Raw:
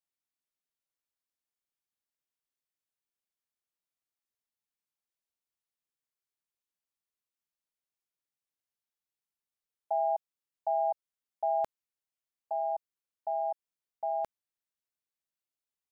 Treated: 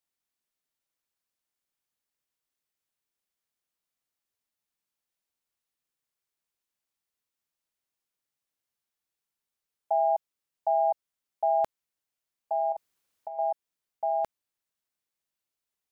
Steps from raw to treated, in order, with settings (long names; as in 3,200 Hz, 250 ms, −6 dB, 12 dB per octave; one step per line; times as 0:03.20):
0:12.72–0:13.39: compressor whose output falls as the input rises −38 dBFS, ratio −0.5
level +4.5 dB